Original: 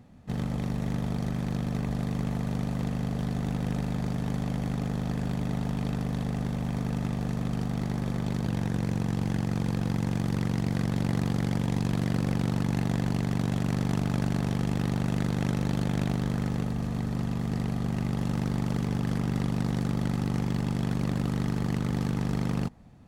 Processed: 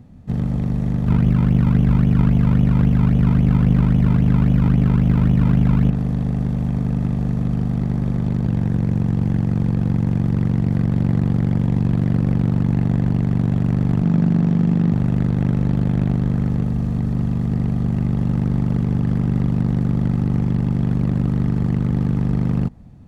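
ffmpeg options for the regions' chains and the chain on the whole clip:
-filter_complex "[0:a]asettb=1/sr,asplit=3[a][b][c];[a]atrim=end=1.074[d];[b]atrim=start=1.07:end=5.9,asetpts=PTS-STARTPTS,afade=t=in:d=0.004:c=qsin,afade=t=out:st=4.826:d=0.004:c=qsin,lowshelf=f=490:g=6,acrusher=samples=27:mix=1:aa=0.000001:lfo=1:lforange=27:lforate=3.7[e];[c]atrim=start=5.896[f];[d][e]acrossfade=d=0.004:c1=hsin:c2=qsin[g];[g][f]acrossfade=d=0.004:c1=qsin:c2=hsin,asettb=1/sr,asplit=3[h][i][j];[h]atrim=end=14.024[k];[i]atrim=start=14.02:end=14.93,asetpts=PTS-STARTPTS,afade=t=in:d=0.004:c=qsin,afade=t=out:st=0.906:d=0.004:c=qsin,lowpass=f=8.4k:w=0.5412,lowpass=f=8.4k:w=1.3066,lowshelf=f=130:t=q:w=3:g=-6.5[l];[j]atrim=start=14.926[m];[k][l]acrossfade=d=0.004:c1=hsin:c2=qsin[n];[n][m]acrossfade=d=0.004:c1=qsin:c2=hsin,acrossover=split=3000[o][p];[p]acompressor=threshold=-54dB:ratio=4:attack=1:release=60[q];[o][q]amix=inputs=2:normalize=0,lowshelf=f=340:g=12"

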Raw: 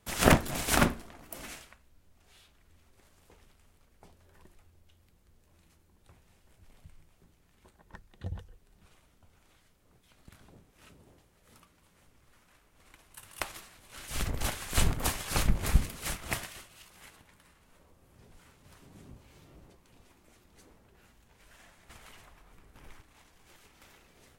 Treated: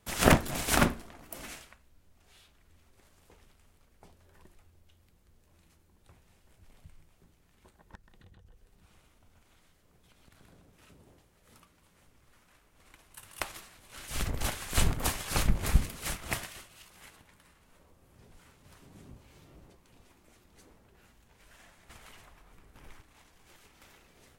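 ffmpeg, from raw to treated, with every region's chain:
-filter_complex "[0:a]asettb=1/sr,asplit=3[a][b][c];[a]atrim=end=7.954[d];[b]atrim=start=7.95:end=10.89,asetpts=PTS-STARTPTS,afade=t=in:d=0.004:c=qsin,afade=t=out:st=2.936:d=0.004:c=qsin,tremolo=f=19:d=0.33,acompressor=threshold=-54dB:ratio=10:attack=3.2:release=140:knee=1:detection=peak,aecho=1:1:128:0.668,atrim=end_sample=129654[e];[c]atrim=start=10.886[f];[d][e]acrossfade=d=0.004:c1=hsin:c2=qsin[g];[g][f]acrossfade=d=0.004:c1=qsin:c2=hsin"

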